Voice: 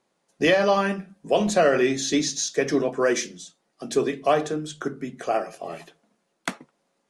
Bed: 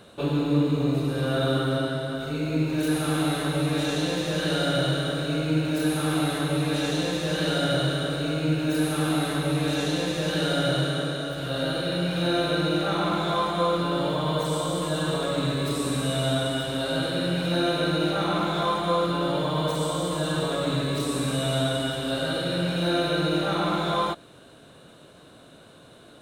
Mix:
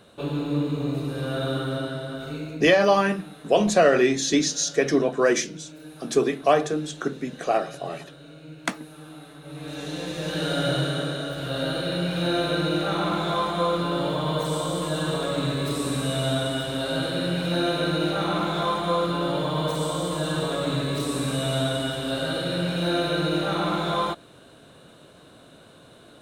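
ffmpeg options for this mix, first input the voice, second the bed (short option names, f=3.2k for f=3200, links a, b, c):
-filter_complex "[0:a]adelay=2200,volume=1.5dB[a];[1:a]volume=15.5dB,afade=t=out:st=2.32:d=0.37:silence=0.16788,afade=t=in:st=9.41:d=1.28:silence=0.11885[b];[a][b]amix=inputs=2:normalize=0"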